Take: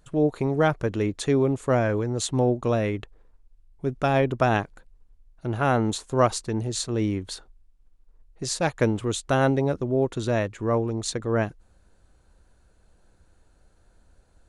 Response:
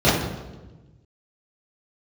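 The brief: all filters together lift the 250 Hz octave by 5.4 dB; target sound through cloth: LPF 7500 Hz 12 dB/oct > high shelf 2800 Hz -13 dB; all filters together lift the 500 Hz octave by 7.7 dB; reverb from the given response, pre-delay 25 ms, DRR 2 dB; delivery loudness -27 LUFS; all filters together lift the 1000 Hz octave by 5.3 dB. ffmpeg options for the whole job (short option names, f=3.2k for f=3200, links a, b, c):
-filter_complex "[0:a]equalizer=f=250:t=o:g=4,equalizer=f=500:t=o:g=7.5,equalizer=f=1k:t=o:g=5.5,asplit=2[a][b];[1:a]atrim=start_sample=2205,adelay=25[c];[b][c]afir=irnorm=-1:irlink=0,volume=-24.5dB[d];[a][d]amix=inputs=2:normalize=0,lowpass=7.5k,highshelf=f=2.8k:g=-13,volume=-13dB"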